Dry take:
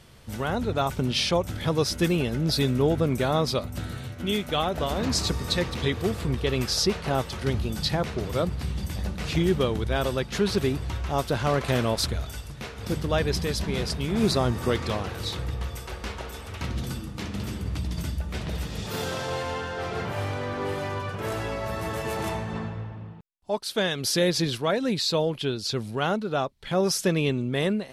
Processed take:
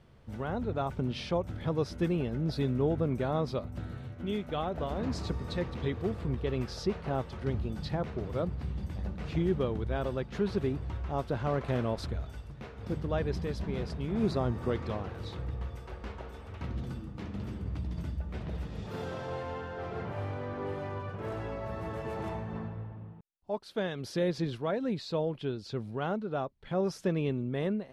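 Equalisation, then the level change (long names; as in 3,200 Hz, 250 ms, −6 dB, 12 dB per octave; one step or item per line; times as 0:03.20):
low-pass filter 1,100 Hz 6 dB per octave
−5.5 dB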